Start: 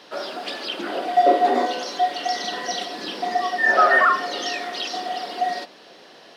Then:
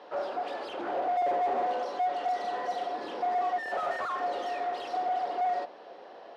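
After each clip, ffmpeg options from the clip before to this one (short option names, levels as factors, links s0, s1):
-af "aeval=exprs='(tanh(35.5*val(0)+0.5)-tanh(0.5))/35.5':c=same,bandpass=f=670:t=q:w=1.6:csg=0,bandreject=f=640:w=16,volume=2.11"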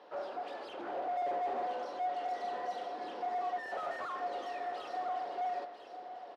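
-af "aecho=1:1:998:0.316,volume=0.447"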